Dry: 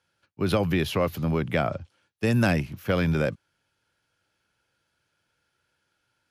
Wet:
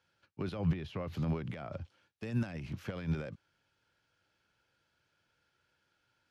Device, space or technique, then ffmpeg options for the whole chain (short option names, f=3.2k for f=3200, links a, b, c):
de-esser from a sidechain: -filter_complex "[0:a]lowpass=6.5k,asplit=2[a][b];[b]highpass=f=4k:p=1,apad=whole_len=278270[c];[a][c]sidechaincompress=threshold=-47dB:ratio=16:attack=1.4:release=72,asettb=1/sr,asplit=3[d][e][f];[d]atrim=end=0.564[g];[e]atrim=start=0.56:end=1.15,asetpts=PTS-STARTPTS,afade=t=in:d=0.004:c=qsin,afade=t=out:st=0.586:d=0.004:c=qsin,bass=f=250:g=4,treble=f=4k:g=-6[h];[f]atrim=start=1.146[i];[g][h]acrossfade=d=0.004:c1=hsin:c2=qsin[j];[j][i]acrossfade=d=0.004:c1=qsin:c2=hsin,volume=-2dB"